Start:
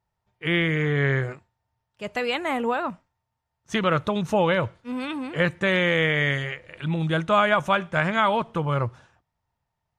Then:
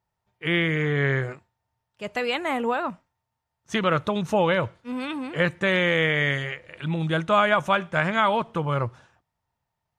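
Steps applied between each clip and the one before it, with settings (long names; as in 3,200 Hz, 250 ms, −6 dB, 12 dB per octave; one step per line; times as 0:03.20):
low-shelf EQ 81 Hz −5.5 dB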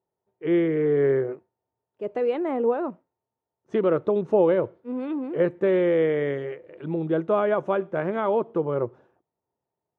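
resonant band-pass 390 Hz, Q 2.8
level +9 dB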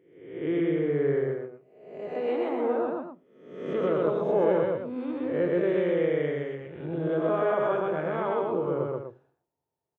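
peak hold with a rise ahead of every peak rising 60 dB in 0.80 s
loudspeakers that aren't time-aligned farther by 44 metres −1 dB, 84 metres −8 dB
on a send at −18 dB: convolution reverb RT60 0.40 s, pre-delay 3 ms
on the sum: level −7.5 dB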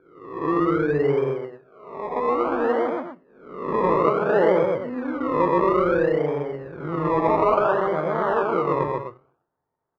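sample-and-hold swept by an LFO 23×, swing 60% 0.59 Hz
low-pass with resonance 1,200 Hz, resonance Q 1.9
level +4 dB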